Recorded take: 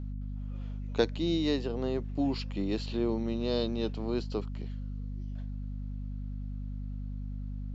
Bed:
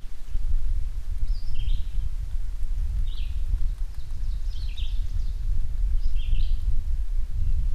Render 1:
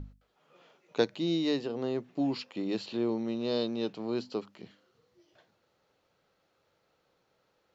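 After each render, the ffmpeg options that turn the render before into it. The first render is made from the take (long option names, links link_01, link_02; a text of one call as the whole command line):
ffmpeg -i in.wav -af "bandreject=frequency=50:width_type=h:width=6,bandreject=frequency=100:width_type=h:width=6,bandreject=frequency=150:width_type=h:width=6,bandreject=frequency=200:width_type=h:width=6,bandreject=frequency=250:width_type=h:width=6" out.wav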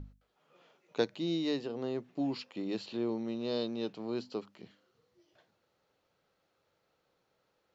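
ffmpeg -i in.wav -af "volume=-3.5dB" out.wav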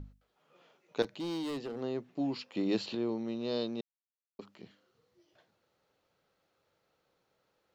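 ffmpeg -i in.wav -filter_complex "[0:a]asettb=1/sr,asplit=3[link_01][link_02][link_03];[link_01]atrim=end=1.024[link_04];[link_02]atrim=start=1.02:end=1.81,asetpts=PTS-STARTPTS,afade=type=in:duration=0.004:curve=qsin,afade=type=out:start_time=0.786:duration=0.004:curve=qsin,asoftclip=type=hard:threshold=-34dB[link_05];[link_03]atrim=start=1.806[link_06];[link_04][link_05]acrossfade=duration=0.004:curve1=hsin:curve2=qsin[link_07];[link_07][link_06]acrossfade=duration=0.004:curve1=qsin:curve2=hsin,asettb=1/sr,asplit=3[link_08][link_09][link_10];[link_08]atrim=end=2.524[link_11];[link_09]atrim=start=2.52:end=2.95,asetpts=PTS-STARTPTS,afade=type=in:duration=0.004:curve=qsin,afade=type=out:start_time=0.426:duration=0.004:curve=qsin,acontrast=35[link_12];[link_10]atrim=start=2.946[link_13];[link_11][link_12]acrossfade=duration=0.004:curve1=hsin:curve2=qsin[link_14];[link_14][link_13]acrossfade=duration=0.004:curve1=qsin:curve2=hsin,asplit=3[link_15][link_16][link_17];[link_15]atrim=end=3.81,asetpts=PTS-STARTPTS,afade=type=out:start_time=3.806:duration=0.004:curve=hsin[link_18];[link_16]atrim=start=3.81:end=4.39,asetpts=PTS-STARTPTS,volume=0[link_19];[link_17]atrim=start=4.39,asetpts=PTS-STARTPTS,afade=type=in:duration=0.004:curve=hsin[link_20];[link_18][link_19][link_20]concat=n=3:v=0:a=1" out.wav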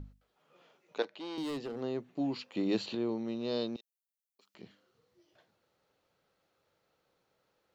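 ffmpeg -i in.wav -filter_complex "[0:a]asettb=1/sr,asplit=3[link_01][link_02][link_03];[link_01]atrim=end=0.984[link_04];[link_02]atrim=start=0.98:end=1.38,asetpts=PTS-STARTPTS,afade=type=in:duration=0.004:curve=qsin,afade=type=out:start_time=0.396:duration=0.004:curve=qsin,highpass=420,lowpass=4100[link_05];[link_03]atrim=start=1.376[link_06];[link_04][link_05]acrossfade=duration=0.004:curve1=hsin:curve2=qsin[link_07];[link_07][link_06]acrossfade=duration=0.004:curve1=qsin:curve2=hsin,asettb=1/sr,asplit=3[link_08][link_09][link_10];[link_08]atrim=end=1.914[link_11];[link_09]atrim=start=1.91:end=3.26,asetpts=PTS-STARTPTS,afade=type=in:duration=0.004:curve=qsin,afade=type=out:start_time=1.346:duration=0.004:curve=qsin,bandreject=frequency=5200:width=12[link_12];[link_10]atrim=start=3.256[link_13];[link_11][link_12]acrossfade=duration=0.004:curve1=hsin:curve2=qsin[link_14];[link_14][link_13]acrossfade=duration=0.004:curve1=qsin:curve2=hsin,asettb=1/sr,asplit=3[link_15][link_16][link_17];[link_15]atrim=end=3.764[link_18];[link_16]atrim=start=3.76:end=4.55,asetpts=PTS-STARTPTS,afade=type=in:duration=0.004:curve=qsin,afade=type=out:start_time=0.786:duration=0.004:curve=qsin,aderivative[link_19];[link_17]atrim=start=4.546[link_20];[link_18][link_19]acrossfade=duration=0.004:curve1=hsin:curve2=qsin[link_21];[link_21][link_20]acrossfade=duration=0.004:curve1=qsin:curve2=hsin" out.wav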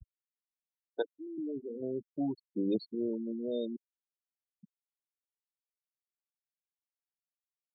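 ffmpeg -i in.wav -af "highpass=56,afftfilt=real='re*gte(hypot(re,im),0.0398)':imag='im*gte(hypot(re,im),0.0398)':win_size=1024:overlap=0.75" out.wav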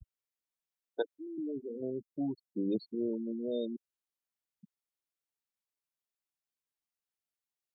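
ffmpeg -i in.wav -filter_complex "[0:a]asettb=1/sr,asplit=3[link_01][link_02][link_03];[link_01]atrim=end=1.904[link_04];[link_02]atrim=start=1.9:end=2.85,asetpts=PTS-STARTPTS,afade=type=in:duration=0.004:curve=qsin,afade=type=out:start_time=0.946:duration=0.004:curve=qsin,equalizer=frequency=1700:width=0.37:gain=-6.5[link_05];[link_03]atrim=start=2.846[link_06];[link_04][link_05]acrossfade=duration=0.004:curve1=hsin:curve2=qsin[link_07];[link_07][link_06]acrossfade=duration=0.004:curve1=qsin:curve2=hsin" out.wav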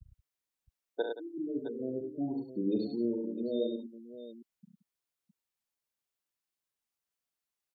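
ffmpeg -i in.wav -af "aecho=1:1:42|69|102|174|661:0.447|0.447|0.531|0.178|0.251" out.wav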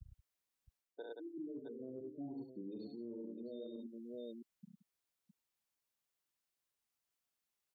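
ffmpeg -i in.wav -af "areverse,acompressor=threshold=-40dB:ratio=6,areverse,alimiter=level_in=14.5dB:limit=-24dB:level=0:latency=1:release=286,volume=-14.5dB" out.wav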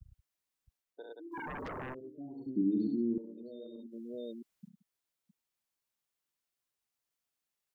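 ffmpeg -i in.wav -filter_complex "[0:a]asplit=3[link_01][link_02][link_03];[link_01]afade=type=out:start_time=1.31:duration=0.02[link_04];[link_02]aeval=exprs='0.0126*sin(PI/2*4.47*val(0)/0.0126)':channel_layout=same,afade=type=in:start_time=1.31:duration=0.02,afade=type=out:start_time=1.93:duration=0.02[link_05];[link_03]afade=type=in:start_time=1.93:duration=0.02[link_06];[link_04][link_05][link_06]amix=inputs=3:normalize=0,asettb=1/sr,asplit=3[link_07][link_08][link_09];[link_07]atrim=end=2.464[link_10];[link_08]atrim=start=2.46:end=3.18,asetpts=PTS-STARTPTS,afade=type=in:duration=0.004:curve=qsin,afade=type=out:start_time=0.716:duration=0.004:curve=qsin,lowshelf=frequency=410:width_type=q:width=3:gain=12[link_11];[link_09]atrim=start=3.176[link_12];[link_10][link_11]acrossfade=duration=0.004:curve1=hsin:curve2=qsin[link_13];[link_13][link_12]acrossfade=duration=0.004:curve1=qsin:curve2=hsin,asplit=3[link_14][link_15][link_16];[link_14]afade=type=out:start_time=3.91:duration=0.02[link_17];[link_15]acontrast=31,afade=type=in:start_time=3.91:duration=0.02,afade=type=out:start_time=4.68:duration=0.02[link_18];[link_16]afade=type=in:start_time=4.68:duration=0.02[link_19];[link_17][link_18][link_19]amix=inputs=3:normalize=0" out.wav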